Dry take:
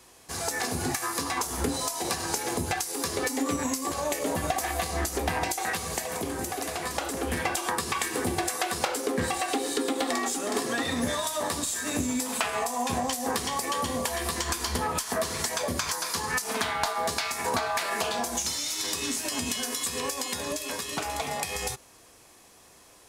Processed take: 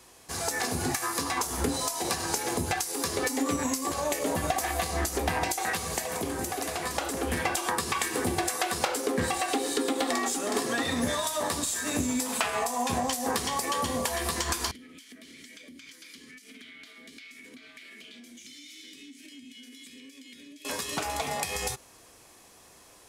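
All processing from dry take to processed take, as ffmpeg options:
ffmpeg -i in.wav -filter_complex "[0:a]asettb=1/sr,asplit=3[link_01][link_02][link_03];[link_01]atrim=end=14.714[link_04];[link_02]atrim=start=14.71:end=20.65,asetpts=PTS-STARTPTS,afade=type=in:duration=0.004:curve=qsin,afade=type=out:start_time=5.936:duration=0.004:curve=qsin,asplit=3[link_05][link_06][link_07];[link_05]bandpass=frequency=270:width_type=q:width=8,volume=0dB[link_08];[link_06]bandpass=frequency=2290:width_type=q:width=8,volume=-6dB[link_09];[link_07]bandpass=frequency=3010:width_type=q:width=8,volume=-9dB[link_10];[link_08][link_09][link_10]amix=inputs=3:normalize=0,acompressor=threshold=-46dB:ratio=4:attack=3.2:release=140:knee=1:detection=peak,aemphasis=mode=production:type=50fm[link_11];[link_03]atrim=start=20.646[link_12];[link_04][link_11]acrossfade=duration=0.004:curve1=hsin:curve2=qsin[link_13];[link_13][link_12]acrossfade=duration=0.004:curve1=qsin:curve2=hsin" out.wav

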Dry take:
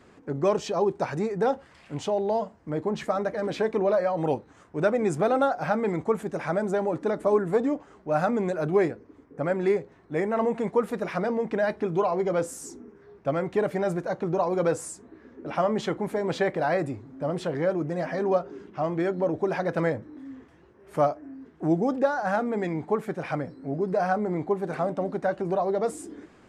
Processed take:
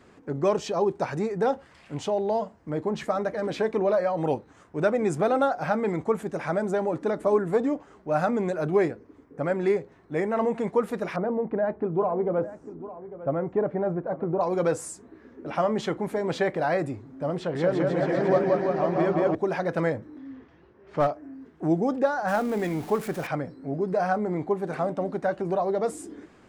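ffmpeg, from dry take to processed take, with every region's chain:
ffmpeg -i in.wav -filter_complex "[0:a]asettb=1/sr,asplit=3[link_01][link_02][link_03];[link_01]atrim=end=11.164[link_04];[link_02]atrim=start=11.16:end=14.41,asetpts=PTS-STARTPTS,afade=type=in:duration=0.004:curve=qsin,afade=type=out:start_time=3.246:duration=0.004:curve=qsin,lowpass=1100,aecho=1:1:850:0.178,atrim=end_sample=143325[link_05];[link_03]atrim=start=14.406[link_06];[link_04][link_05]acrossfade=duration=0.004:curve1=hsin:curve2=qsin[link_07];[link_07][link_06]acrossfade=duration=0.004:curve1=qsin:curve2=hsin,asettb=1/sr,asplit=3[link_08][link_09][link_10];[link_08]atrim=end=17.374[link_11];[link_09]atrim=start=17.37:end=19.35,asetpts=PTS-STARTPTS,afade=type=in:duration=0.004:curve=qsin,afade=type=out:start_time=1.976:duration=0.004:curve=qsin,adynamicsmooth=sensitivity=2.5:basefreq=6600,aecho=1:1:180|342|487.8|619|737.1|843.4|939.1:0.794|0.631|0.501|0.398|0.316|0.251|0.2,atrim=end_sample=87318[link_12];[link_10]atrim=start=19.346[link_13];[link_11][link_12]acrossfade=duration=0.004:curve1=hsin:curve2=qsin[link_14];[link_14][link_13]acrossfade=duration=0.004:curve1=qsin:curve2=hsin,asettb=1/sr,asplit=3[link_15][link_16][link_17];[link_15]atrim=end=20.184[link_18];[link_16]atrim=start=20.18:end=21.14,asetpts=PTS-STARTPTS,afade=type=in:duration=0.004:curve=qsin,afade=type=out:start_time=0.956:duration=0.004:curve=qsin,lowpass=frequency=5200:width=0.5412,lowpass=frequency=5200:width=1.3066,aeval=exprs='clip(val(0),-1,0.075)':channel_layout=same[link_19];[link_17]atrim=start=21.136[link_20];[link_18][link_19]acrossfade=duration=0.004:curve1=hsin:curve2=qsin[link_21];[link_21][link_20]acrossfade=duration=0.004:curve1=qsin:curve2=hsin,asettb=1/sr,asplit=3[link_22][link_23][link_24];[link_22]atrim=end=22.284[link_25];[link_23]atrim=start=22.28:end=23.27,asetpts=PTS-STARTPTS,afade=type=in:duration=0.004:curve=qsin,afade=type=out:start_time=0.986:duration=0.004:curve=qsin,aeval=exprs='val(0)+0.5*0.0112*sgn(val(0))':channel_layout=same,highshelf=frequency=5600:gain=6.5[link_26];[link_24]atrim=start=23.266[link_27];[link_25][link_26]acrossfade=duration=0.004:curve1=hsin:curve2=qsin[link_28];[link_28][link_27]acrossfade=duration=0.004:curve1=qsin:curve2=hsin" out.wav

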